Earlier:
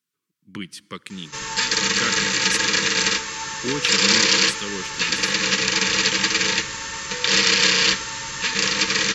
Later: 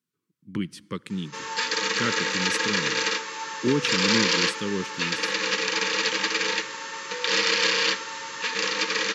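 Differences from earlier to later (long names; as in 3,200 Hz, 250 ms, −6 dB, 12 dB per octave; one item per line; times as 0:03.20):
background: add band-pass filter 490–6,200 Hz
master: add tilt shelving filter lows +6 dB, about 830 Hz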